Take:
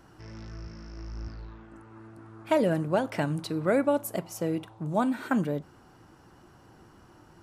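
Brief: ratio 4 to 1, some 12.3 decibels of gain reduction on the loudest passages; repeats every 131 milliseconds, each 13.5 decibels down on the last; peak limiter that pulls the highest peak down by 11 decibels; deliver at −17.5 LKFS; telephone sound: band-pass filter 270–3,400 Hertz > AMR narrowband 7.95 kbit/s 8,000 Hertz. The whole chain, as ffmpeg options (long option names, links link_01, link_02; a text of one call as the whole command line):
ffmpeg -i in.wav -af "acompressor=threshold=-35dB:ratio=4,alimiter=level_in=9dB:limit=-24dB:level=0:latency=1,volume=-9dB,highpass=270,lowpass=3400,aecho=1:1:131|262:0.211|0.0444,volume=29dB" -ar 8000 -c:a libopencore_amrnb -b:a 7950 out.amr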